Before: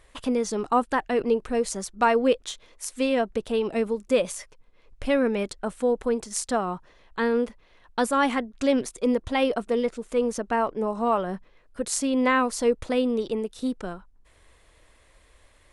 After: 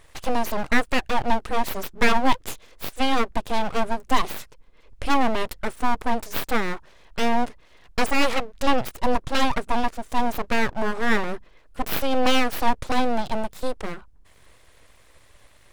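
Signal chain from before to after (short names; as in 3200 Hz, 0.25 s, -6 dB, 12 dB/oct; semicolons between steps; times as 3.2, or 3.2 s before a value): full-wave rectifier; gain +5 dB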